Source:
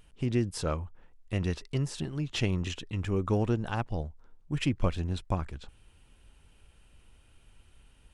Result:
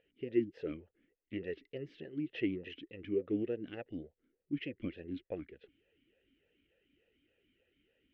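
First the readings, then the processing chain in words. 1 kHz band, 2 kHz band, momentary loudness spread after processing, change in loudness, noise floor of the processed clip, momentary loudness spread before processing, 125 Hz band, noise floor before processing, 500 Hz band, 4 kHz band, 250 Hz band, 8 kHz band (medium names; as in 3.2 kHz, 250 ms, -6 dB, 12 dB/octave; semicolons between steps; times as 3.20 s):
-22.0 dB, -8.5 dB, 13 LU, -7.5 dB, under -85 dBFS, 9 LU, -19.5 dB, -61 dBFS, -4.0 dB, -13.5 dB, -5.0 dB, under -35 dB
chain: distance through air 260 m; talking filter e-i 3.4 Hz; trim +5.5 dB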